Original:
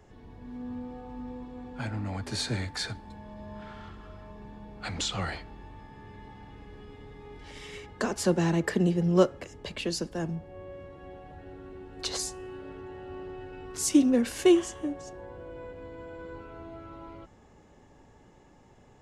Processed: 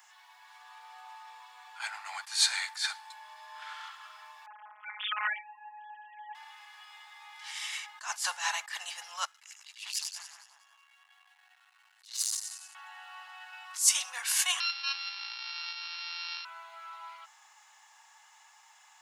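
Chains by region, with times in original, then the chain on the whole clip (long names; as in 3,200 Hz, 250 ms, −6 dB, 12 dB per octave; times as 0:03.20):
0:04.46–0:06.35: three sine waves on the formant tracks + phases set to zero 211 Hz + low-pass filter 1,500 Hz 6 dB per octave
0:09.25–0:12.75: guitar amp tone stack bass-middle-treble 5-5-5 + echo with a time of its own for lows and highs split 1,400 Hz, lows 177 ms, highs 94 ms, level −3 dB + saturating transformer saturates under 3,700 Hz
0:14.60–0:16.45: samples sorted by size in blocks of 32 samples + flat-topped bell 870 Hz −10.5 dB 2.7 octaves + bad sample-rate conversion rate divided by 4×, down none, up filtered
whole clip: Butterworth high-pass 820 Hz 48 dB per octave; spectral tilt +3 dB per octave; level that may rise only so fast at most 180 dB per second; level +4 dB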